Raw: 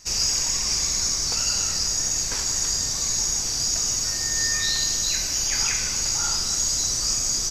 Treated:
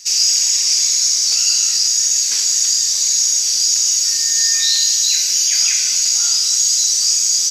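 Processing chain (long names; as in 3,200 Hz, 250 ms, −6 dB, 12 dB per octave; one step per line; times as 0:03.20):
first-order pre-emphasis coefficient 0.8
in parallel at −1.5 dB: brickwall limiter −22.5 dBFS, peak gain reduction 9 dB
on the sum: meter weighting curve D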